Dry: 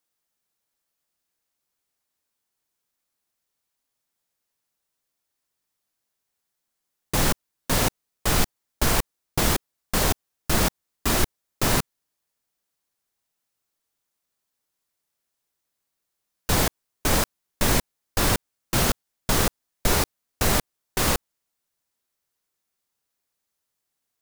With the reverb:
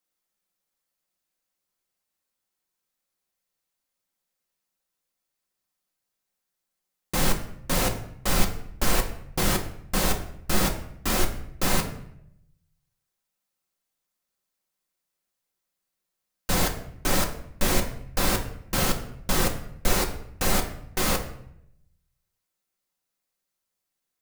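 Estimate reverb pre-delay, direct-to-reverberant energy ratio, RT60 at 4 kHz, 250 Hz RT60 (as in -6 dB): 4 ms, 2.0 dB, 0.55 s, 0.95 s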